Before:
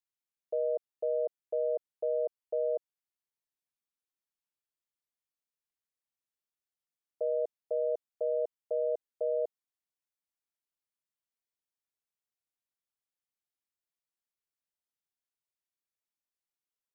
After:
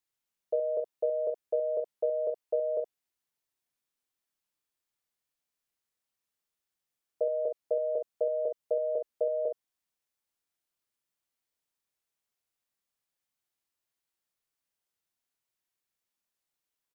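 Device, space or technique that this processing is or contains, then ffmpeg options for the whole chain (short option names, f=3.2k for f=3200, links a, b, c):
slapback doubling: -filter_complex "[0:a]asplit=3[a][b][c];[b]adelay=28,volume=-8dB[d];[c]adelay=70,volume=-7.5dB[e];[a][d][e]amix=inputs=3:normalize=0,volume=4.5dB"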